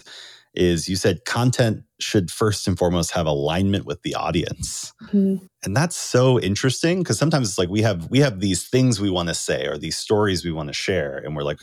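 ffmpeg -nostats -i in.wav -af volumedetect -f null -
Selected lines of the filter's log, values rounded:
mean_volume: -21.2 dB
max_volume: -4.9 dB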